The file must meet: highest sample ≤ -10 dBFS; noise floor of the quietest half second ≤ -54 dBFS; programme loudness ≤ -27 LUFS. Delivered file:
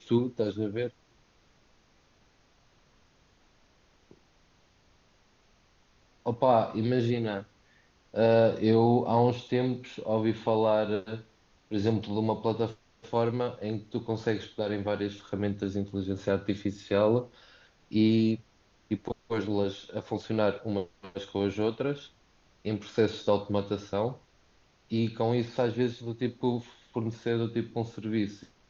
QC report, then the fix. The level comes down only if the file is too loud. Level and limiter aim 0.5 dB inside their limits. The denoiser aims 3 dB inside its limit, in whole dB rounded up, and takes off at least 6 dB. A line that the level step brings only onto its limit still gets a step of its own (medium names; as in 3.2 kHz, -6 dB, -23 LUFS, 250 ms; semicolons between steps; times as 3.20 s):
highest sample -12.0 dBFS: pass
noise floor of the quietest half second -64 dBFS: pass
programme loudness -29.5 LUFS: pass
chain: none needed